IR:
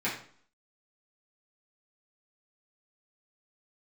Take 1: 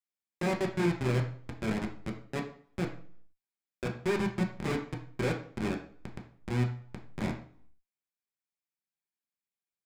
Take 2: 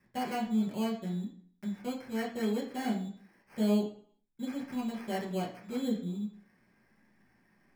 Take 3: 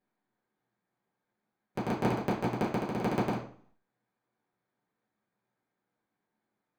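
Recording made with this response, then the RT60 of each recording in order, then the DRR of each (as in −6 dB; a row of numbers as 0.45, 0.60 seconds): 3; 0.55, 0.50, 0.50 seconds; 0.5, −4.0, −9.0 decibels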